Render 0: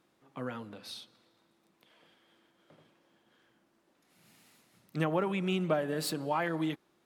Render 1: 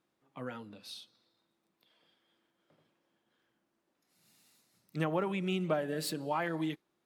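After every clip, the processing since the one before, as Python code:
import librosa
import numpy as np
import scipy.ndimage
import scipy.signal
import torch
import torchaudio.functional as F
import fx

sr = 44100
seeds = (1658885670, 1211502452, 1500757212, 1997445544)

y = fx.noise_reduce_blind(x, sr, reduce_db=7)
y = y * librosa.db_to_amplitude(-2.0)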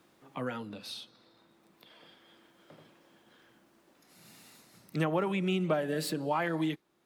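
y = fx.band_squash(x, sr, depth_pct=40)
y = y * librosa.db_to_amplitude(3.5)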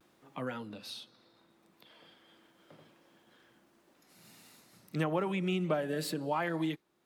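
y = fx.vibrato(x, sr, rate_hz=0.32, depth_cents=21.0)
y = y * librosa.db_to_amplitude(-2.0)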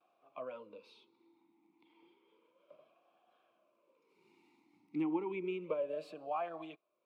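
y = fx.vowel_sweep(x, sr, vowels='a-u', hz=0.31)
y = y * librosa.db_to_amplitude(4.0)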